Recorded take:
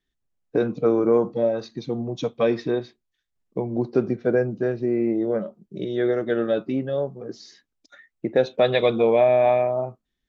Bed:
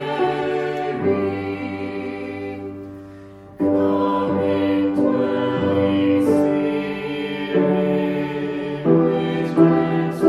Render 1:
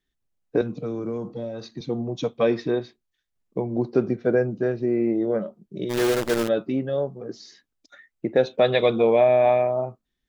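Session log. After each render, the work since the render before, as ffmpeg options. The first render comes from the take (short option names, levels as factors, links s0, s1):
-filter_complex "[0:a]asettb=1/sr,asplit=3[s0][s1][s2];[s0]atrim=end=0.614[s3];[s1]atrim=start=0.61:end=1.81,asetpts=PTS-STARTPTS,afade=t=in:d=0.004:c=qsin,afade=t=out:st=1.196:d=0.004:c=qsin,acrossover=split=200|3000[s4][s5][s6];[s5]acompressor=threshold=0.02:ratio=3:attack=3.2:release=140:knee=2.83:detection=peak[s7];[s4][s7][s6]amix=inputs=3:normalize=0[s8];[s2]atrim=start=1.806[s9];[s3][s8]acrossfade=d=0.004:c1=hsin:c2=qsin[s10];[s10][s9]acrossfade=d=0.004:c1=qsin:c2=hsin,asplit=3[s11][s12][s13];[s11]afade=t=out:st=5.89:d=0.02[s14];[s12]acrusher=bits=5:dc=4:mix=0:aa=0.000001,afade=t=in:st=5.89:d=0.02,afade=t=out:st=6.47:d=0.02[s15];[s13]afade=t=in:st=6.47:d=0.02[s16];[s14][s15][s16]amix=inputs=3:normalize=0"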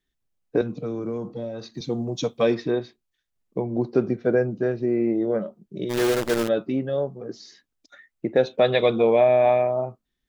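-filter_complex "[0:a]asettb=1/sr,asplit=3[s0][s1][s2];[s0]atrim=end=1.744[s3];[s1]atrim=start=1.74:end=2.55,asetpts=PTS-STARTPTS,afade=t=in:d=0.004:c=qsin,afade=t=out:st=0.806:d=0.004:c=qsin,bass=f=250:g=1,treble=f=4000:g=10[s4];[s2]atrim=start=2.546[s5];[s3][s4]acrossfade=d=0.004:c1=hsin:c2=qsin[s6];[s6][s5]acrossfade=d=0.004:c1=qsin:c2=hsin"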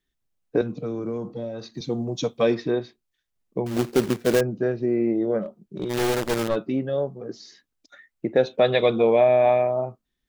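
-filter_complex "[0:a]asettb=1/sr,asplit=3[s0][s1][s2];[s0]atrim=end=3.664[s3];[s1]atrim=start=3.66:end=4.41,asetpts=PTS-STARTPTS,afade=t=in:d=0.004:c=qsin,afade=t=out:st=0.746:d=0.004:c=qsin,acrusher=bits=2:mode=log:mix=0:aa=0.000001[s4];[s2]atrim=start=4.406[s5];[s3][s4]acrossfade=d=0.004:c1=hsin:c2=qsin[s6];[s6][s5]acrossfade=d=0.004:c1=qsin:c2=hsin,asplit=3[s7][s8][s9];[s7]afade=t=out:st=5.42:d=0.02[s10];[s8]aeval=exprs='clip(val(0),-1,0.0501)':c=same,afade=t=in:st=5.42:d=0.02,afade=t=out:st=6.55:d=0.02[s11];[s9]afade=t=in:st=6.55:d=0.02[s12];[s10][s11][s12]amix=inputs=3:normalize=0"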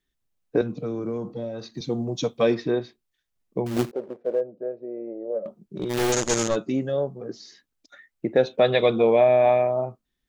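-filter_complex "[0:a]asettb=1/sr,asplit=3[s0][s1][s2];[s0]atrim=end=3.914[s3];[s1]atrim=start=3.91:end=5.46,asetpts=PTS-STARTPTS,afade=t=in:d=0.004:c=qsin,afade=t=out:st=1.546:d=0.004:c=qsin,bandpass=f=550:t=q:w=4.3[s4];[s2]atrim=start=5.456[s5];[s3][s4]acrossfade=d=0.004:c1=hsin:c2=qsin[s6];[s6][s5]acrossfade=d=0.004:c1=qsin:c2=hsin,asettb=1/sr,asplit=3[s7][s8][s9];[s7]atrim=end=6.124[s10];[s8]atrim=start=6.12:end=6.92,asetpts=PTS-STARTPTS,afade=t=in:d=0.004:c=qsin,afade=t=out:st=0.796:d=0.004:c=qsin,lowpass=f=6700:t=q:w=10[s11];[s9]atrim=start=6.916[s12];[s10][s11]acrossfade=d=0.004:c1=hsin:c2=qsin[s13];[s13][s12]acrossfade=d=0.004:c1=qsin:c2=hsin"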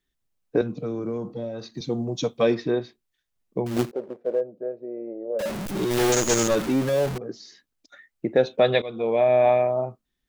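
-filter_complex "[0:a]asettb=1/sr,asplit=3[s0][s1][s2];[s0]atrim=end=5.394[s3];[s1]atrim=start=5.39:end=7.18,asetpts=PTS-STARTPTS,afade=t=in:d=0.004:c=qsin,afade=t=out:st=1.786:d=0.004:c=qsin,aeval=exprs='val(0)+0.5*0.0531*sgn(val(0))':c=same[s4];[s2]atrim=start=7.176[s5];[s3][s4]acrossfade=d=0.004:c1=hsin:c2=qsin[s6];[s6][s5]acrossfade=d=0.004:c1=qsin:c2=hsin,asplit=2[s7][s8];[s7]atrim=end=8.82,asetpts=PTS-STARTPTS,afade=t=out:st=8.816:d=0.004:c=hsin:silence=0.105925[s9];[s8]atrim=start=8.82,asetpts=PTS-STARTPTS,afade=t=in:d=0.56:silence=0.105925[s10];[s9][s10]concat=n=2:v=0:a=1"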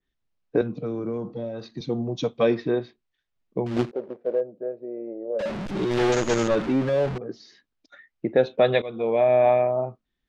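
-af "lowpass=4100,adynamicequalizer=threshold=0.0141:dfrequency=2700:dqfactor=0.7:tfrequency=2700:tqfactor=0.7:attack=5:release=100:ratio=0.375:range=2:mode=cutabove:tftype=highshelf"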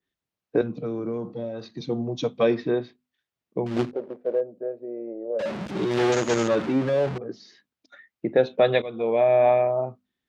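-af "highpass=93,bandreject=f=50:t=h:w=6,bandreject=f=100:t=h:w=6,bandreject=f=150:t=h:w=6,bandreject=f=200:t=h:w=6,bandreject=f=250:t=h:w=6"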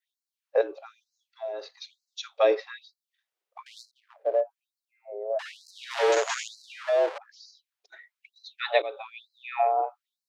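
-af "afreqshift=81,afftfilt=real='re*gte(b*sr/1024,320*pow(4000/320,0.5+0.5*sin(2*PI*1.1*pts/sr)))':imag='im*gte(b*sr/1024,320*pow(4000/320,0.5+0.5*sin(2*PI*1.1*pts/sr)))':win_size=1024:overlap=0.75"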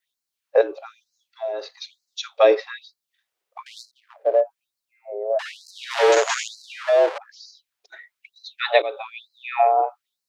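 -af "volume=2.11,alimiter=limit=0.794:level=0:latency=1"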